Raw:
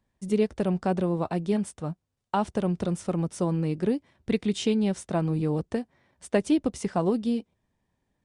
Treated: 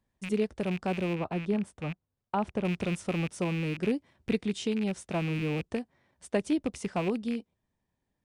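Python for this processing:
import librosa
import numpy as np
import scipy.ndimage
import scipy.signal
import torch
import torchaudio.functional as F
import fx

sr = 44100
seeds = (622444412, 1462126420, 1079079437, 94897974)

y = fx.rattle_buzz(x, sr, strikes_db=-37.0, level_db=-24.0)
y = fx.high_shelf(y, sr, hz=2900.0, db=-11.5, at=(1.15, 2.65))
y = fx.rider(y, sr, range_db=10, speed_s=0.5)
y = y * librosa.db_to_amplitude(-4.0)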